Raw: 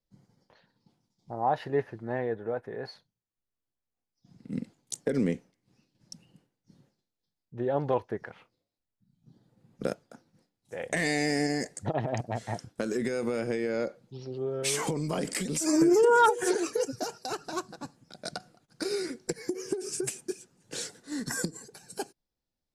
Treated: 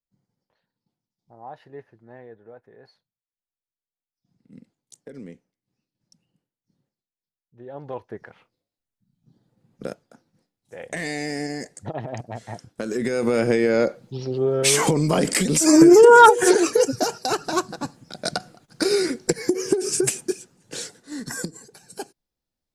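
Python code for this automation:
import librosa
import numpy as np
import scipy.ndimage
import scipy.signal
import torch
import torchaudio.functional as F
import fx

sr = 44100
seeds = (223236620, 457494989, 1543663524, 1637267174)

y = fx.gain(x, sr, db=fx.line((7.56, -12.5), (8.19, -1.0), (12.62, -1.0), (13.4, 11.0), (20.14, 11.0), (20.98, 1.5)))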